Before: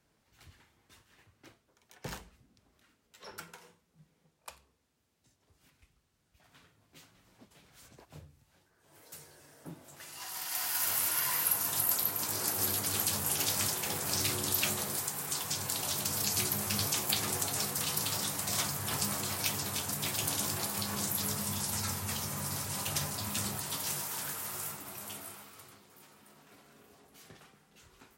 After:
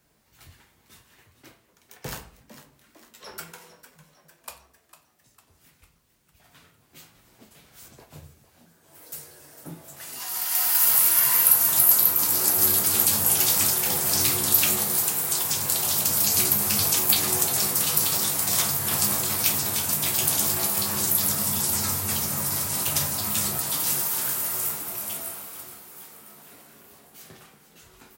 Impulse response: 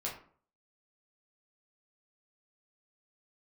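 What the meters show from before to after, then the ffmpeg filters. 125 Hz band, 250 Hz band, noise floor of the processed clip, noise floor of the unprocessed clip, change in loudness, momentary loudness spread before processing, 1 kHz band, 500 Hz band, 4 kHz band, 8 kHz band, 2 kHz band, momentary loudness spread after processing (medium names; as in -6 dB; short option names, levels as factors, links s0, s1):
+5.0 dB, +6.0 dB, -64 dBFS, -74 dBFS, +11.5 dB, 17 LU, +6.5 dB, +7.0 dB, +7.0 dB, +10.0 dB, +6.5 dB, 16 LU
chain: -filter_complex "[0:a]highshelf=f=12000:g=6.5,asplit=7[s0][s1][s2][s3][s4][s5][s6];[s1]adelay=452,afreqshift=88,volume=0.211[s7];[s2]adelay=904,afreqshift=176,volume=0.116[s8];[s3]adelay=1356,afreqshift=264,volume=0.0638[s9];[s4]adelay=1808,afreqshift=352,volume=0.0351[s10];[s5]adelay=2260,afreqshift=440,volume=0.0193[s11];[s6]adelay=2712,afreqshift=528,volume=0.0106[s12];[s0][s7][s8][s9][s10][s11][s12]amix=inputs=7:normalize=0,asplit=2[s13][s14];[1:a]atrim=start_sample=2205,highshelf=f=7300:g=11.5[s15];[s14][s15]afir=irnorm=-1:irlink=0,volume=0.631[s16];[s13][s16]amix=inputs=2:normalize=0,volume=1.26"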